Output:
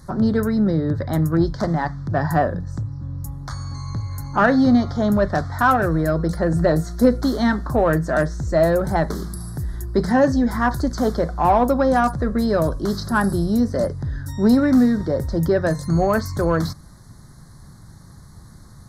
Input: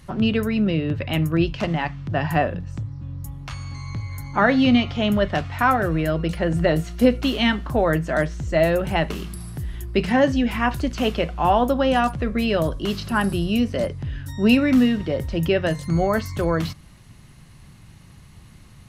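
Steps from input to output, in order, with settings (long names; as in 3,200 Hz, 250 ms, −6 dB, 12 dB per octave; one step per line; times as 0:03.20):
Chebyshev band-stop filter 1,600–4,400 Hz, order 2
in parallel at −4.5 dB: soft clipping −18 dBFS, distortion −12 dB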